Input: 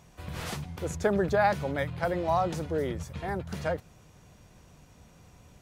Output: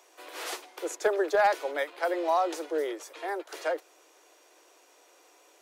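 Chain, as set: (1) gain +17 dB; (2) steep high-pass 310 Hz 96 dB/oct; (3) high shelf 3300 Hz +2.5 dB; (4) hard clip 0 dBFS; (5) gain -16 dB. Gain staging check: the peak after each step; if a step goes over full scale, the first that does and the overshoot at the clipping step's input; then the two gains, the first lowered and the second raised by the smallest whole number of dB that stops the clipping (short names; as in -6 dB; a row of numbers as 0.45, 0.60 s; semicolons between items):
+4.5, +3.0, +3.5, 0.0, -16.0 dBFS; step 1, 3.5 dB; step 1 +13 dB, step 5 -12 dB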